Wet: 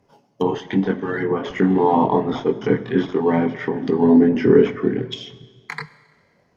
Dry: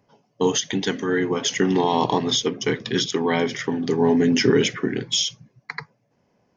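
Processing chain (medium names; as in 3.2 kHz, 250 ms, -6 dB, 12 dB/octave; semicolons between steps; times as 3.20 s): chorus voices 4, 0.45 Hz, delay 23 ms, depth 2.6 ms; in parallel at -9 dB: decimation with a swept rate 8×, swing 100% 1.3 Hz; on the sum: low-pass that closes with the level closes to 1.3 kHz, closed at -22 dBFS; Schroeder reverb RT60 1.6 s, combs from 30 ms, DRR 16 dB; trim +4 dB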